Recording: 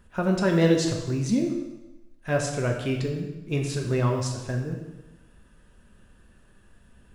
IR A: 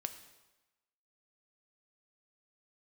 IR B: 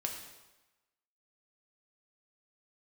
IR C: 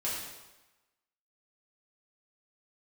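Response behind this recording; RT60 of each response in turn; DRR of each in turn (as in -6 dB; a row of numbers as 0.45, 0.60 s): B; 1.1, 1.1, 1.1 s; 8.0, 1.5, -8.0 dB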